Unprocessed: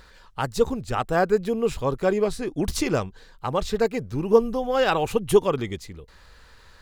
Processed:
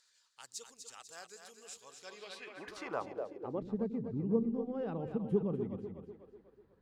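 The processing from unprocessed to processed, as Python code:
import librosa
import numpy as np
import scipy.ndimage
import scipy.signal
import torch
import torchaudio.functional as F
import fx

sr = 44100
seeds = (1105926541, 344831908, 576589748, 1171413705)

y = fx.echo_split(x, sr, split_hz=340.0, low_ms=92, high_ms=247, feedback_pct=52, wet_db=-7)
y = fx.filter_sweep_bandpass(y, sr, from_hz=7000.0, to_hz=200.0, start_s=1.93, end_s=3.77, q=2.1)
y = y * 10.0 ** (-5.0 / 20.0)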